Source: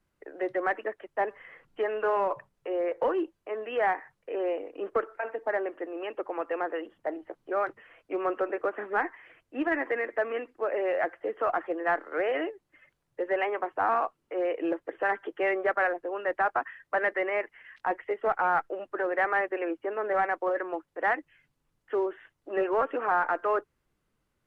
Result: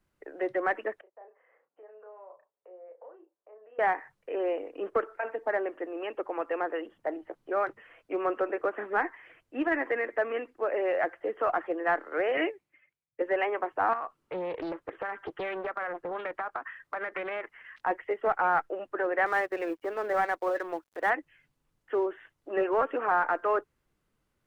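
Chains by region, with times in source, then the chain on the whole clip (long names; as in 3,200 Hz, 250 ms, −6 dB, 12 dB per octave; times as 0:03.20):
0:01.01–0:03.79: downward compressor 2.5 to 1, threshold −44 dBFS + four-pole ladder band-pass 680 Hz, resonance 35% + double-tracking delay 33 ms −6 dB
0:12.37–0:13.22: high-pass filter 66 Hz + parametric band 2,300 Hz +11.5 dB 0.37 octaves + multiband upward and downward expander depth 100%
0:13.93–0:17.79: parametric band 1,200 Hz +6 dB 0.65 octaves + downward compressor 8 to 1, threshold −30 dBFS + highs frequency-modulated by the lows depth 0.5 ms
0:19.26–0:21.10: mu-law and A-law mismatch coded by A + upward compression, threshold −33 dBFS
whole clip: no processing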